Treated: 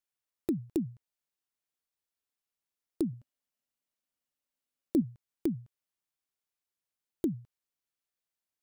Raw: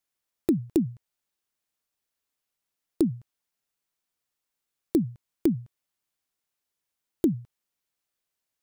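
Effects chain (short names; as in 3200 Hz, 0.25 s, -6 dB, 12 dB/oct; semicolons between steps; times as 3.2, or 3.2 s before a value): 3.13–5.02 small resonant body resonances 250/570/2900 Hz, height 8 dB; gain -7.5 dB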